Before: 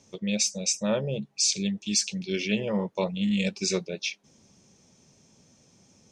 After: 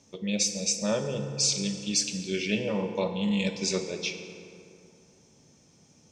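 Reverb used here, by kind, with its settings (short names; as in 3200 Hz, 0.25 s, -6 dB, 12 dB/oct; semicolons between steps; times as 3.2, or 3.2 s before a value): FDN reverb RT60 2.8 s, high-frequency decay 0.5×, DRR 5 dB; gain -1.5 dB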